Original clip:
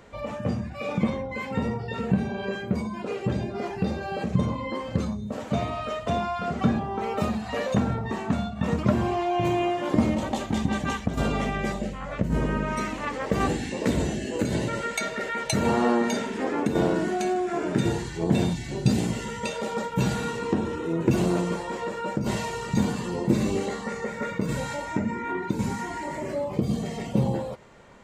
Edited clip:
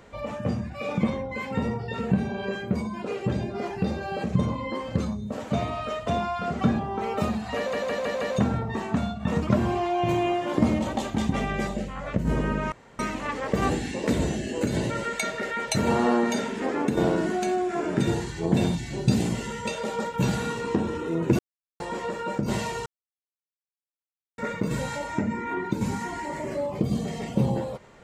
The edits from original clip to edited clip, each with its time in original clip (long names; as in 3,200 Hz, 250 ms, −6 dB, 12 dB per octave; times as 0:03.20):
0:07.57: stutter 0.16 s, 5 plays
0:10.70–0:11.39: remove
0:12.77: splice in room tone 0.27 s
0:21.17–0:21.58: silence
0:22.64–0:24.16: silence